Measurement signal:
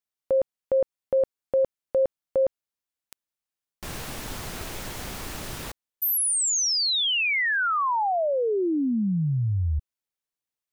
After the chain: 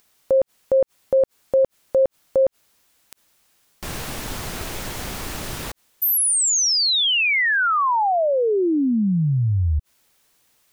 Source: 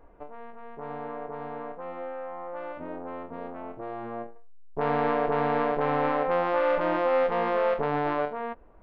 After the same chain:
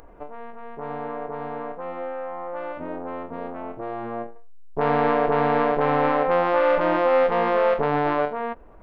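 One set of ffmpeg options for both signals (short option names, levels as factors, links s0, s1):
-af "acompressor=mode=upward:threshold=0.00398:ratio=2.5:attack=2.1:release=42:knee=2.83:detection=peak,volume=1.78"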